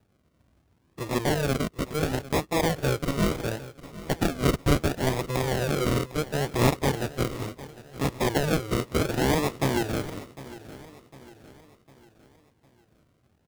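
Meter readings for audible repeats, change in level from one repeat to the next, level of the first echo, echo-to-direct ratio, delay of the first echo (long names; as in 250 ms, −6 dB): 3, −6.5 dB, −17.0 dB, −16.0 dB, 754 ms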